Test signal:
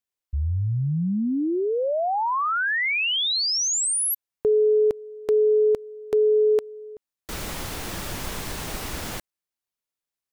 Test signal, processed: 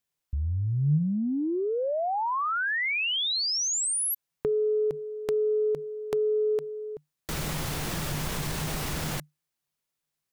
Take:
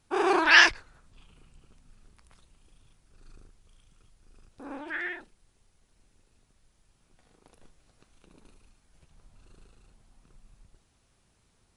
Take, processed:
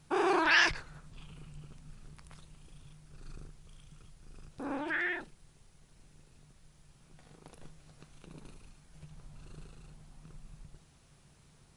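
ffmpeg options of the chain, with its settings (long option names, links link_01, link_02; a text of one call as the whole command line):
ffmpeg -i in.wav -af "equalizer=frequency=150:width=5.6:gain=14.5,acompressor=threshold=-41dB:ratio=2:attack=26:release=22:knee=6:detection=rms,volume=4.5dB" out.wav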